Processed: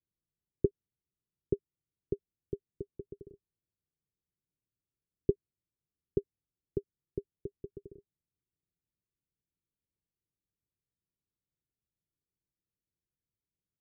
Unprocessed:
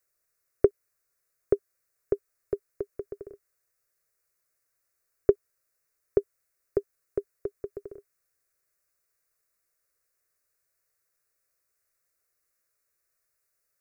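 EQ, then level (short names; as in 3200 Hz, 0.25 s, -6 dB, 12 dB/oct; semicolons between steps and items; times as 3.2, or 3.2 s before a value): HPF 46 Hz 6 dB/oct; ladder low-pass 270 Hz, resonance 45%; +10.5 dB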